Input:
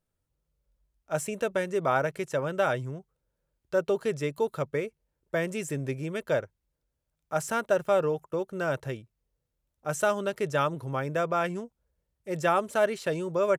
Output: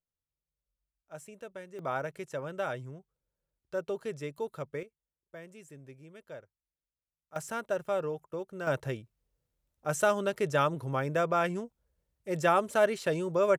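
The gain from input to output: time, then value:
-16 dB
from 1.79 s -8 dB
from 4.83 s -18.5 dB
from 7.36 s -7 dB
from 8.67 s -0.5 dB

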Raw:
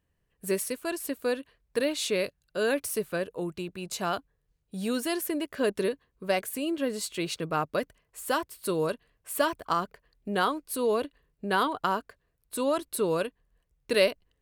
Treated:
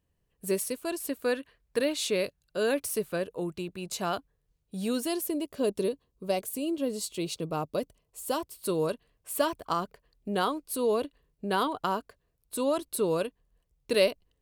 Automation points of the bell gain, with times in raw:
bell 1700 Hz 1 oct
0.99 s -6 dB
1.35 s +3.5 dB
2.03 s -3.5 dB
4.83 s -3.5 dB
5.35 s -15 dB
8.25 s -15 dB
8.69 s -6 dB

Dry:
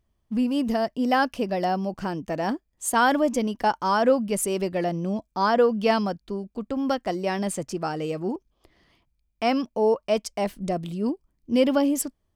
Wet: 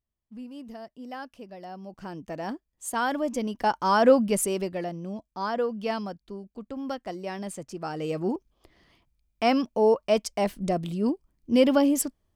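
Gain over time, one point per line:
1.65 s -17 dB
2.21 s -7 dB
3.13 s -7 dB
4.2 s +3 dB
4.95 s -8 dB
7.71 s -8 dB
8.18 s +0.5 dB

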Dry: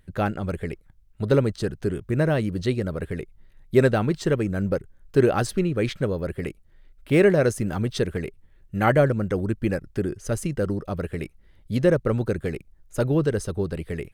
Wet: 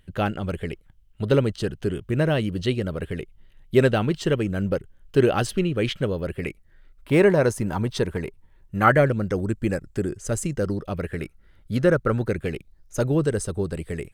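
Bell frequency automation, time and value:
bell +10.5 dB 0.32 oct
6.29 s 3000 Hz
7.14 s 940 Hz
8.77 s 940 Hz
9.42 s 7600 Hz
10.5 s 7600 Hz
11.2 s 1400 Hz
12.09 s 1400 Hz
13.11 s 8100 Hz

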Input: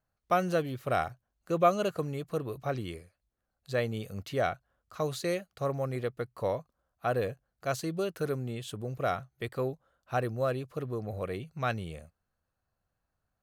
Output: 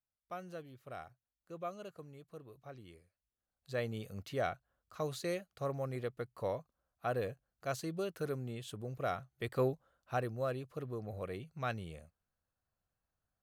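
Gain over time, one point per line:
2.79 s -18 dB
3.87 s -6 dB
9.3 s -6 dB
9.62 s +0.5 dB
10.31 s -6.5 dB

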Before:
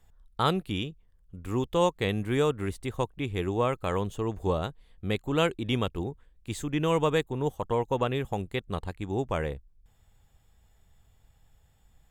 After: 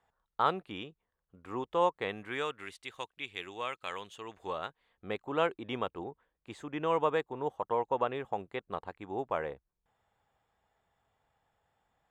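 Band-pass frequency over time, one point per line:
band-pass, Q 0.89
2 s 1000 Hz
2.7 s 2900 Hz
4.13 s 2900 Hz
5.12 s 930 Hz

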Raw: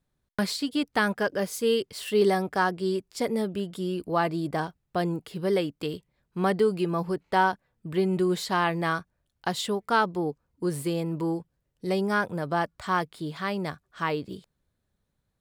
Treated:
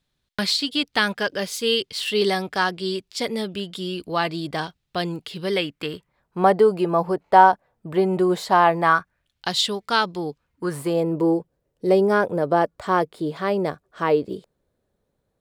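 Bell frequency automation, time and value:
bell +12.5 dB 1.7 oct
5.45 s 3600 Hz
6.38 s 720 Hz
8.73 s 720 Hz
9.48 s 4100 Hz
10.29 s 4100 Hz
11.07 s 480 Hz

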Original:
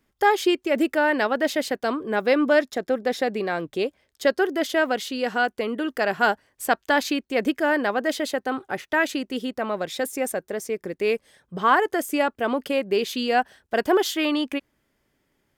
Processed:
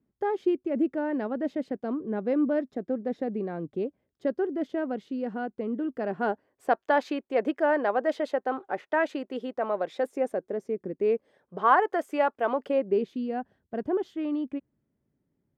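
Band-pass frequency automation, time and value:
band-pass, Q 0.94
5.88 s 190 Hz
6.86 s 640 Hz
9.93 s 640 Hz
10.86 s 230 Hz
11.73 s 780 Hz
12.55 s 780 Hz
13.17 s 150 Hz

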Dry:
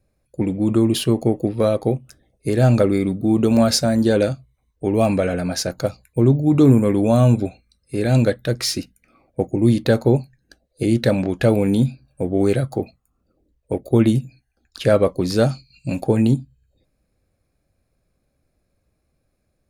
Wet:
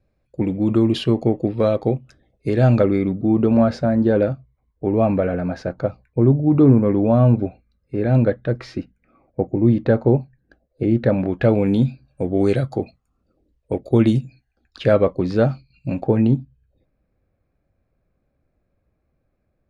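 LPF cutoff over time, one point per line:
2.48 s 3800 Hz
3.63 s 1600 Hz
11.06 s 1600 Hz
11.65 s 3200 Hz
12.25 s 5400 Hz
14.17 s 5400 Hz
15.5 s 2100 Hz

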